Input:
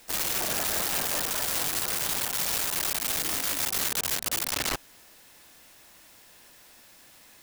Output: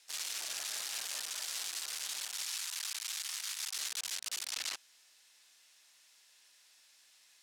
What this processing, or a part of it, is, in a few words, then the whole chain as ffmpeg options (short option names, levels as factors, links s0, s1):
piezo pickup straight into a mixer: -filter_complex "[0:a]lowpass=5300,aderivative,asettb=1/sr,asplit=3[s0][s1][s2];[s0]atrim=end=2.434[s3];[s1]atrim=start=2.43:end=3.77,asetpts=PTS-STARTPTS,afade=t=in:d=0.004:c=qsin,afade=t=out:st=1.336:d=0.004:c=qsin,highpass=f=830:w=0.5412,highpass=f=830:w=1.3066[s4];[s2]atrim=start=3.766[s5];[s3][s4]acrossfade=d=0.004:c1=hsin:c2=qsin[s6];[s6][s5]acrossfade=d=0.004:c1=qsin:c2=hsin"